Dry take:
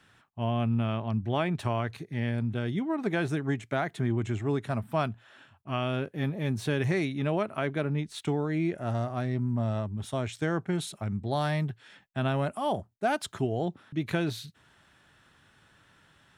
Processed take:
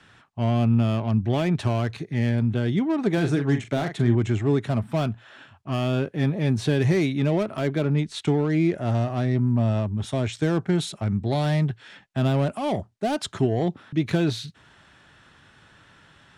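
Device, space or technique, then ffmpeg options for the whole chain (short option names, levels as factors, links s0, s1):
one-band saturation: -filter_complex "[0:a]lowpass=7700,asettb=1/sr,asplit=3[s0][s1][s2];[s0]atrim=end=3.134[s3];[s1]atrim=start=3.13:end=4.15,asetpts=PTS-STARTPTS,afade=t=in:d=0.004:c=qsin,afade=t=out:st=1.016:d=0.004:c=qsin,asplit=2[s4][s5];[s5]adelay=42,volume=0.335[s6];[s4][s6]amix=inputs=2:normalize=0,atrim=end_sample=44982[s7];[s2]atrim=start=4.146[s8];[s3][s7]acrossfade=d=0.004:c1=hsin:c2=qsin[s9];[s9][s8]acrossfade=d=0.004:c1=qsin:c2=hsin,acrossover=split=550|3400[s10][s11][s12];[s11]asoftclip=type=tanh:threshold=0.0112[s13];[s10][s13][s12]amix=inputs=3:normalize=0,volume=2.37"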